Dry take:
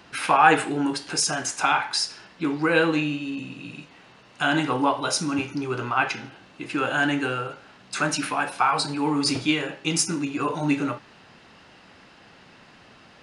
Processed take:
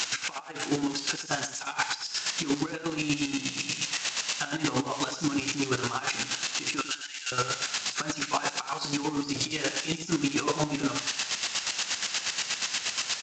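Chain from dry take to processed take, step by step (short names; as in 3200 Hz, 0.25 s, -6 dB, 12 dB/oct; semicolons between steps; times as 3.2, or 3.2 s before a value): switching spikes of -15 dBFS; negative-ratio compressor -24 dBFS, ratio -0.5; chopper 8.4 Hz, depth 65%, duty 35%; 6.81–7.32 Butterworth band-pass 5500 Hz, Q 0.62; on a send: feedback echo 0.102 s, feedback 23%, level -10.5 dB; on the sum: downsampling 16000 Hz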